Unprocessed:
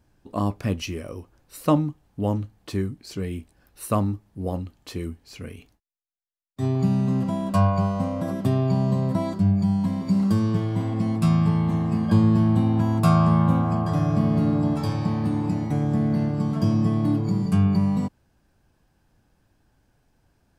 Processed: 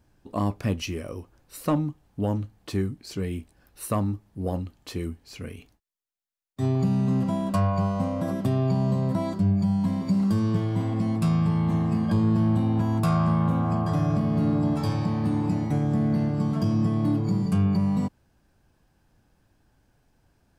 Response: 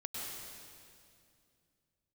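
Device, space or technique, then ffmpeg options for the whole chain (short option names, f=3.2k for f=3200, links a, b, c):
soft clipper into limiter: -af "asoftclip=type=tanh:threshold=-11dB,alimiter=limit=-15.5dB:level=0:latency=1:release=284"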